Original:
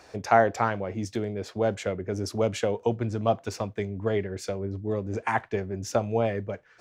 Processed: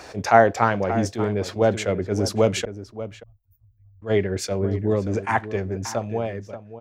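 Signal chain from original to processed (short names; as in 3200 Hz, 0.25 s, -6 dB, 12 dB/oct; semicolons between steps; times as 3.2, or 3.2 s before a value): ending faded out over 2.01 s; 2.65–4.02 inverse Chebyshev band-stop 170–8700 Hz, stop band 60 dB; in parallel at +1 dB: compressor, threshold -34 dBFS, peak gain reduction 18 dB; on the sum: outdoor echo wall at 100 m, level -13 dB; attack slew limiter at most 280 dB/s; gain +4.5 dB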